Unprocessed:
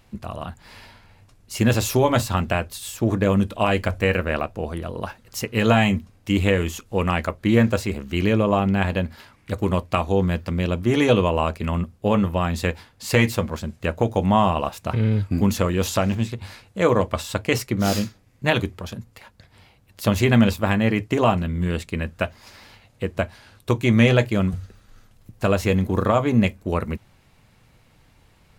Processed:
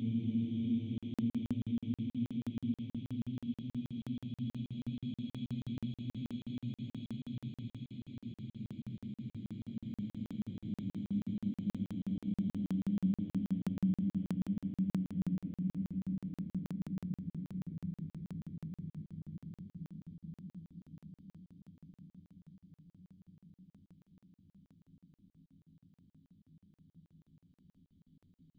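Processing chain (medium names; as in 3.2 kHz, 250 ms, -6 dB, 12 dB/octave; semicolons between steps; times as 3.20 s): coarse spectral quantiser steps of 15 dB; elliptic band-stop 200–3700 Hz, stop band 40 dB; tilt EQ -2.5 dB/octave; on a send at -10.5 dB: reverberation RT60 0.85 s, pre-delay 3 ms; on the sum: transient shaper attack -11 dB, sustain -7 dB; in parallel at -2 dB: level held to a coarse grid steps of 17 dB; on the sum: vowel filter i; peaking EQ 160 Hz +12 dB 0.21 oct; compression 4:1, threshold -32 dBFS, peak gain reduction 10.5 dB; Paulstretch 32×, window 0.25 s, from 24.00 s; crackling interface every 0.16 s, samples 2048, zero, from 0.98 s; trim -1.5 dB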